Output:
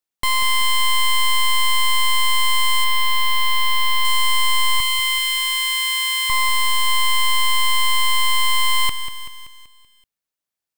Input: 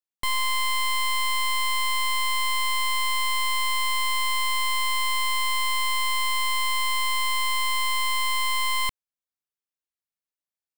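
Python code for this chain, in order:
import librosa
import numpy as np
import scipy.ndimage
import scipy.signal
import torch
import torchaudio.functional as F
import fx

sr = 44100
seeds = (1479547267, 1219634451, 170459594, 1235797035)

y = fx.peak_eq(x, sr, hz=8200.0, db=-6.5, octaves=1.2, at=(2.84, 4.05))
y = fx.highpass(y, sr, hz=1300.0, slope=24, at=(4.8, 6.3))
y = fx.echo_crushed(y, sr, ms=191, feedback_pct=55, bits=9, wet_db=-10.0)
y = y * librosa.db_to_amplitude(6.5)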